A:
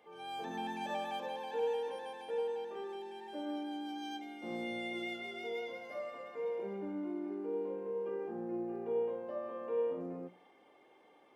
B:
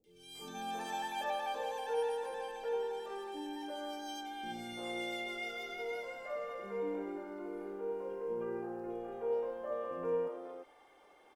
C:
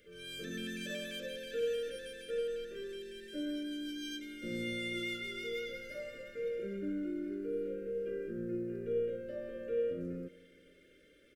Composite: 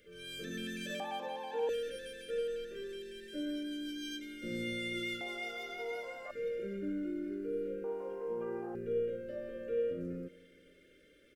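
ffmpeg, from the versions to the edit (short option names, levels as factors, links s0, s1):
-filter_complex "[1:a]asplit=2[s0][s1];[2:a]asplit=4[s2][s3][s4][s5];[s2]atrim=end=1.002[s6];[0:a]atrim=start=0.998:end=1.692[s7];[s3]atrim=start=1.688:end=5.212[s8];[s0]atrim=start=5.208:end=6.312[s9];[s4]atrim=start=6.308:end=7.842[s10];[s1]atrim=start=7.838:end=8.752[s11];[s5]atrim=start=8.748[s12];[s6][s7]acrossfade=d=0.004:c1=hsin:c2=hsin[s13];[s13][s8]acrossfade=d=0.004:c1=hsin:c2=hsin[s14];[s14][s9]acrossfade=d=0.004:c1=hsin:c2=hsin[s15];[s15][s10]acrossfade=d=0.004:c1=hsin:c2=hsin[s16];[s16][s11]acrossfade=d=0.004:c1=hsin:c2=hsin[s17];[s17][s12]acrossfade=d=0.004:c1=hsin:c2=hsin"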